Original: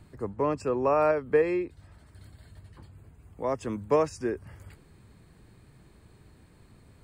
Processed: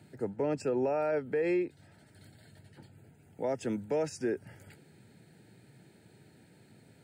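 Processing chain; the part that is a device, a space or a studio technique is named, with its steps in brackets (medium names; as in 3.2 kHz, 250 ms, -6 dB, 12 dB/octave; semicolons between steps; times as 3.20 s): PA system with an anti-feedback notch (high-pass 120 Hz 24 dB/octave; Butterworth band-stop 1.1 kHz, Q 2.8; peak limiter -22.5 dBFS, peak gain reduction 10.5 dB)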